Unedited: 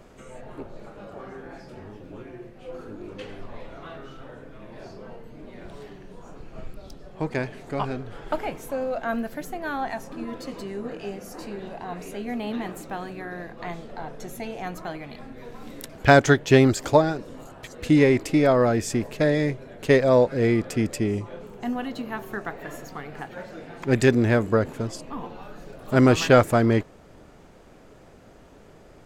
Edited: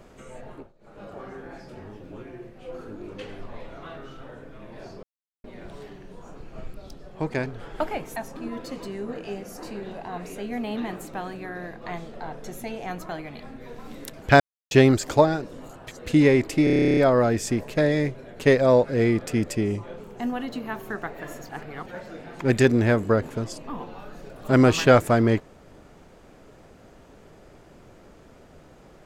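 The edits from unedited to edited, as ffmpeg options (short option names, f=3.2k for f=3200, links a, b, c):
-filter_complex "[0:a]asplit=22[a][b][c][d][e][f][g][h][i][j][k][l][m][n][o][p][q][r][s][t][u][v];[a]atrim=end=0.73,asetpts=PTS-STARTPTS,afade=t=out:st=0.48:d=0.25:silence=0.0841395[w];[b]atrim=start=0.73:end=0.79,asetpts=PTS-STARTPTS,volume=-21.5dB[x];[c]atrim=start=0.79:end=5.03,asetpts=PTS-STARTPTS,afade=t=in:d=0.25:silence=0.0841395,afade=t=out:st=4.236:d=0.004:c=hsin[y];[d]atrim=start=5.03:end=5.44,asetpts=PTS-STARTPTS,volume=0[z];[e]atrim=start=5.44:end=7.462,asetpts=PTS-STARTPTS,afade=t=in:d=0.004:c=hsin[aa];[f]atrim=start=7.978:end=8.682[ab];[g]atrim=start=9.918:end=16.16,asetpts=PTS-STARTPTS,afade=t=out:st=6.238:d=0.004:c=hsin[ac];[h]atrim=start=16.16:end=16.47,asetpts=PTS-STARTPTS,volume=0[ad];[i]atrim=start=16.47:end=18.432,asetpts=PTS-STARTPTS,afade=t=in:d=0.004:c=hsin[ae];[j]atrim=start=18.398:end=18.432[af];[k]atrim=start=18.398:end=18.432[ag];[l]atrim=start=18.398:end=18.432[ah];[m]atrim=start=18.398:end=18.432[ai];[n]atrim=start=18.398:end=18.432[aj];[o]atrim=start=18.398:end=18.432[ak];[p]atrim=start=18.398:end=18.432[al];[q]atrim=start=18.398:end=18.432[am];[r]atrim=start=18.398:end=18.432[an];[s]atrim=start=18.398:end=18.432[ao];[t]atrim=start=18.398:end=22.922[ap];[u]atrim=start=22.918:end=23.292,asetpts=PTS-STARTPTS,areverse[aq];[v]atrim=start=23.288[ar];[w][x][y][z][aa]concat=n=5:v=0:a=1[as];[as][ab]acrossfade=d=0.004:c1=hsin:c2=hsin[at];[ac][ad][ae]concat=n=3:v=0:a=1[au];[at][au]acrossfade=d=0.004:c1=hsin:c2=hsin[av];[av][af]acrossfade=d=0.004:c1=hsin:c2=hsin[aw];[aw][ag]acrossfade=d=0.004:c1=hsin:c2=hsin[ax];[ax][ah]acrossfade=d=0.004:c1=hsin:c2=hsin[ay];[ay][ai]acrossfade=d=0.004:c1=hsin:c2=hsin[az];[az][aj]acrossfade=d=0.004:c1=hsin:c2=hsin[ba];[ba][ak]acrossfade=d=0.004:c1=hsin:c2=hsin[bb];[bb][al]acrossfade=d=0.004:c1=hsin:c2=hsin[bc];[bc][am]acrossfade=d=0.004:c1=hsin:c2=hsin[bd];[bd][an]acrossfade=d=0.004:c1=hsin:c2=hsin[be];[be][ao]acrossfade=d=0.004:c1=hsin:c2=hsin[bf];[bf][ap]acrossfade=d=0.004:c1=hsin:c2=hsin[bg];[bg][aq]acrossfade=d=0.004:c1=hsin:c2=hsin[bh];[bh][ar]acrossfade=d=0.004:c1=hsin:c2=hsin"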